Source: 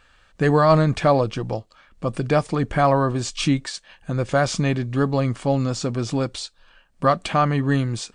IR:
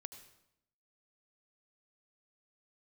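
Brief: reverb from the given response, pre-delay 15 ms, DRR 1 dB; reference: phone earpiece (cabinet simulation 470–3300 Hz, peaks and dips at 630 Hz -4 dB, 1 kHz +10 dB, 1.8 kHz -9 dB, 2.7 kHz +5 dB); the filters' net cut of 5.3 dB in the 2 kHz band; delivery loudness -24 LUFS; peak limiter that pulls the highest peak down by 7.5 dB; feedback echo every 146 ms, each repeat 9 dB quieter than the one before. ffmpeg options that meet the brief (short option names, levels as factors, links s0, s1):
-filter_complex "[0:a]equalizer=f=2000:t=o:g=-4,alimiter=limit=0.224:level=0:latency=1,aecho=1:1:146|292|438|584:0.355|0.124|0.0435|0.0152,asplit=2[s0][s1];[1:a]atrim=start_sample=2205,adelay=15[s2];[s1][s2]afir=irnorm=-1:irlink=0,volume=1.58[s3];[s0][s3]amix=inputs=2:normalize=0,highpass=470,equalizer=f=630:t=q:w=4:g=-4,equalizer=f=1000:t=q:w=4:g=10,equalizer=f=1800:t=q:w=4:g=-9,equalizer=f=2700:t=q:w=4:g=5,lowpass=f=3300:w=0.5412,lowpass=f=3300:w=1.3066,volume=1.12"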